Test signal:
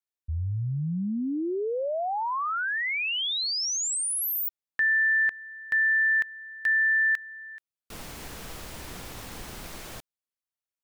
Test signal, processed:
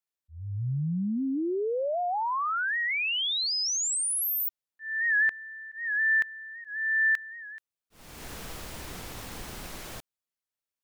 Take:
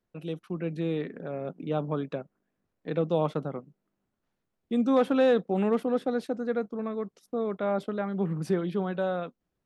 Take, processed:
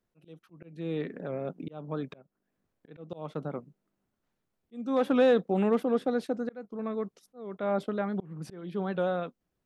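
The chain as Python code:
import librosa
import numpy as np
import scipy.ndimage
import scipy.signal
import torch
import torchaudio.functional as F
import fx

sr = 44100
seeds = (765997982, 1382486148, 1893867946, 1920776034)

y = fx.auto_swell(x, sr, attack_ms=417.0)
y = fx.record_warp(y, sr, rpm=78.0, depth_cents=100.0)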